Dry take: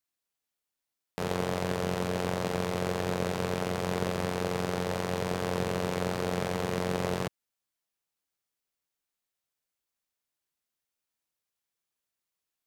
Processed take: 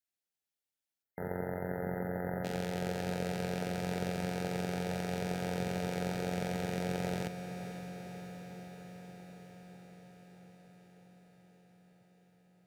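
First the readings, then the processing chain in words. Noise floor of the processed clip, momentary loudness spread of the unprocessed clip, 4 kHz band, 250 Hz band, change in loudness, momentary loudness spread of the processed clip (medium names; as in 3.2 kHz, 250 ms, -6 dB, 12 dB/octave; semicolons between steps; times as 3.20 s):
under -85 dBFS, 1 LU, -7.0 dB, -3.0 dB, -5.5 dB, 17 LU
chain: Butterworth band-stop 1.1 kHz, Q 3; spectral selection erased 1.03–2.44 s, 2.1–11 kHz; echo that smears into a reverb 536 ms, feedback 72%, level -10 dB; trim -6 dB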